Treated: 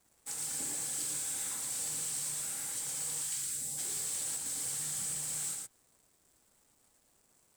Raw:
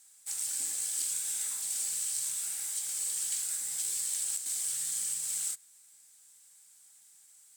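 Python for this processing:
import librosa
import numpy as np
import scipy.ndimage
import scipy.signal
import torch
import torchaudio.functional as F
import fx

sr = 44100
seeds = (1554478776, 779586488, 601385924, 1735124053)

y = np.sign(x) * np.maximum(np.abs(x) - 10.0 ** (-57.0 / 20.0), 0.0)
y = fx.tilt_shelf(y, sr, db=8.5, hz=1200.0)
y = y + 10.0 ** (-5.0 / 20.0) * np.pad(y, (int(114 * sr / 1000.0), 0))[:len(y)]
y = 10.0 ** (-36.5 / 20.0) * np.tanh(y / 10.0 ** (-36.5 / 20.0))
y = fx.peak_eq(y, sr, hz=fx.line((3.21, 290.0), (3.77, 1800.0)), db=-14.0, octaves=1.4, at=(3.21, 3.77), fade=0.02)
y = F.gain(torch.from_numpy(y), 6.5).numpy()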